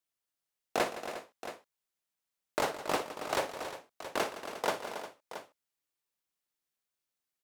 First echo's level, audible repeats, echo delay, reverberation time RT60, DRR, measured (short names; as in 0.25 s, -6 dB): -15.0 dB, 5, 58 ms, none, none